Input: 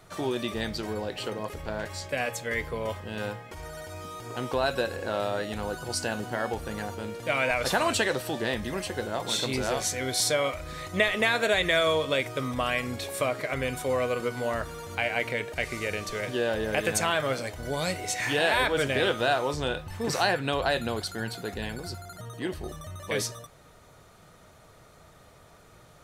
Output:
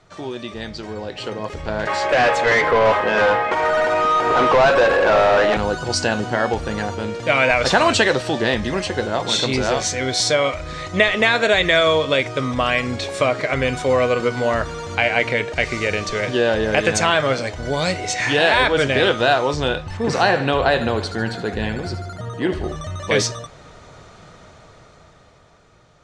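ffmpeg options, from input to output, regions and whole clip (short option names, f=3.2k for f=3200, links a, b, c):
-filter_complex "[0:a]asettb=1/sr,asplit=3[a][b][c];[a]atrim=end=1.874[d];[b]atrim=start=1.87:end=5.57,asetpts=PTS-STARTPTS,afade=t=in:d=0.004:c=qsin,afade=t=out:st=3.696:d=0.004:c=qsin,highpass=f=530:p=1,equalizer=f=5.3k:t=o:w=2.1:g=-13,asplit=2[e][f];[f]highpass=f=720:p=1,volume=28dB,asoftclip=type=tanh:threshold=-18.5dB[g];[e][g]amix=inputs=2:normalize=0,lowpass=f=2k:p=1,volume=-6dB[h];[c]atrim=start=5.566[i];[d][h]acrossfade=d=0.004:c1=hsin:c2=qsin[j];[j][i]acrossfade=d=0.004:c1=qsin:c2=hsin,asettb=1/sr,asplit=3[k][l][m];[k]atrim=end=19.974[n];[l]atrim=start=19.97:end=22.76,asetpts=PTS-STARTPTS,afade=t=in:d=0.004:c=qsin,afade=t=out:st=2.786:d=0.004:c=qsin,equalizer=f=5.7k:w=0.65:g=-6.5,aecho=1:1:75|150|225|300|375|450:0.251|0.133|0.0706|0.0374|0.0198|0.0105,atrim=end_sample=123039[o];[m]atrim=start=22.756[p];[n][o]acrossfade=d=0.004:c1=hsin:c2=qsin[q];[q][p]acrossfade=d=0.004:c1=qsin:c2=hsin,lowpass=f=7k:w=0.5412,lowpass=f=7k:w=1.3066,dynaudnorm=f=290:g=11:m=12.5dB"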